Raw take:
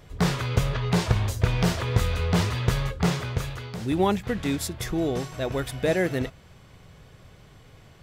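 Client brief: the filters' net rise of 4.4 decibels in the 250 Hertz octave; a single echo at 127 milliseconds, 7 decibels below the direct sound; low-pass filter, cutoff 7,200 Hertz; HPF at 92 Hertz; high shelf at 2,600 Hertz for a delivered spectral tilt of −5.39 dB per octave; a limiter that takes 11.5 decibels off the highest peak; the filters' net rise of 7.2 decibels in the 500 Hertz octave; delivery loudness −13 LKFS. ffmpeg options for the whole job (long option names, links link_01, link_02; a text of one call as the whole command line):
ffmpeg -i in.wav -af "highpass=92,lowpass=7200,equalizer=frequency=250:width_type=o:gain=4.5,equalizer=frequency=500:width_type=o:gain=7.5,highshelf=frequency=2600:gain=4,alimiter=limit=-16.5dB:level=0:latency=1,aecho=1:1:127:0.447,volume=13dB" out.wav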